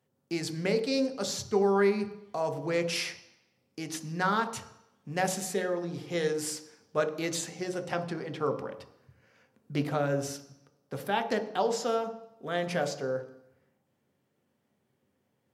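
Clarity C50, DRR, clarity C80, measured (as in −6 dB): 11.5 dB, 6.5 dB, 14.5 dB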